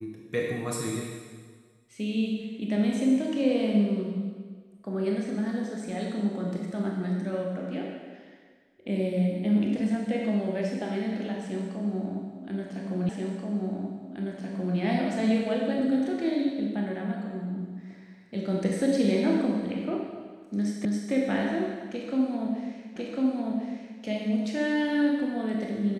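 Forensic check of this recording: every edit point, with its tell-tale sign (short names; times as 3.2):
13.09 repeat of the last 1.68 s
20.85 repeat of the last 0.27 s
22.96 repeat of the last 1.05 s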